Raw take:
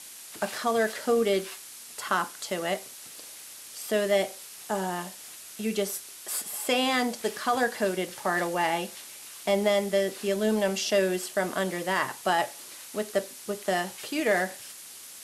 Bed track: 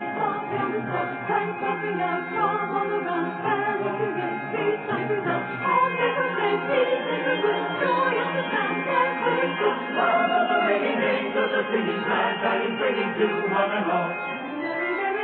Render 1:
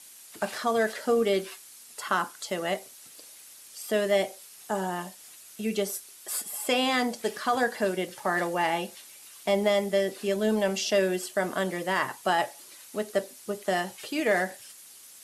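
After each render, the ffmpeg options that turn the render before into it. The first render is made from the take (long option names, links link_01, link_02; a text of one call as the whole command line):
ffmpeg -i in.wav -af "afftdn=noise_reduction=7:noise_floor=-45" out.wav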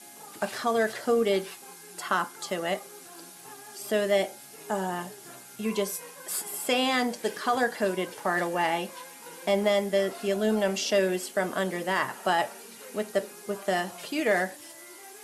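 ffmpeg -i in.wav -i bed.wav -filter_complex "[1:a]volume=-24dB[link_01];[0:a][link_01]amix=inputs=2:normalize=0" out.wav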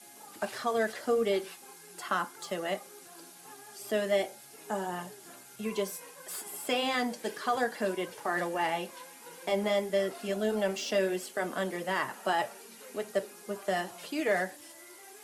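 ffmpeg -i in.wav -filter_complex "[0:a]flanger=delay=1.4:depth=2.7:regen=-58:speed=1.6:shape=triangular,acrossover=split=190|3500[link_01][link_02][link_03];[link_03]asoftclip=type=tanh:threshold=-35.5dB[link_04];[link_01][link_02][link_04]amix=inputs=3:normalize=0" out.wav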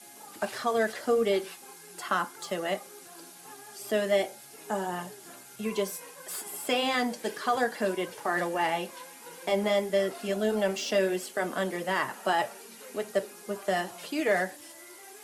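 ffmpeg -i in.wav -af "volume=2.5dB" out.wav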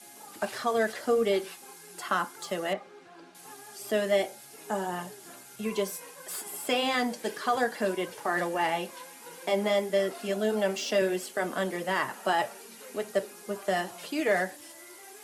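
ffmpeg -i in.wav -filter_complex "[0:a]asettb=1/sr,asplit=3[link_01][link_02][link_03];[link_01]atrim=end=2.734[link_04];[link_02]atrim=start=2.73:end=3.35,asetpts=PTS-STARTPTS,afade=type=in:duration=0.004:curve=qsin,afade=type=out:start_time=0.616:duration=0.004:curve=qsin,lowpass=2800[link_05];[link_03]atrim=start=3.346[link_06];[link_04][link_05]acrossfade=duration=0.004:curve1=hsin:curve2=qsin[link_07];[link_07][link_06]acrossfade=duration=0.004:curve1=qsin:curve2=hsin,asettb=1/sr,asplit=3[link_08][link_09][link_10];[link_08]atrim=end=9.424[link_11];[link_09]atrim=start=9.42:end=11.02,asetpts=PTS-STARTPTS,afade=type=in:duration=0.004:curve=qsin,afade=type=out:start_time=1.596:duration=0.004:curve=qsin,highpass=140[link_12];[link_10]atrim=start=11.016[link_13];[link_11][link_12]acrossfade=duration=0.004:curve1=hsin:curve2=qsin[link_14];[link_14][link_13]acrossfade=duration=0.004:curve1=qsin:curve2=hsin" out.wav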